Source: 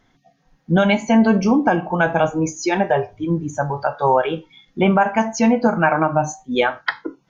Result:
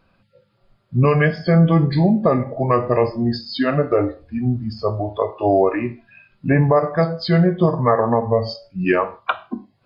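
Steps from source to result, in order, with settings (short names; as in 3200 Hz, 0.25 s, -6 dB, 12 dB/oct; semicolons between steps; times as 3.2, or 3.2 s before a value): speed mistake 45 rpm record played at 33 rpm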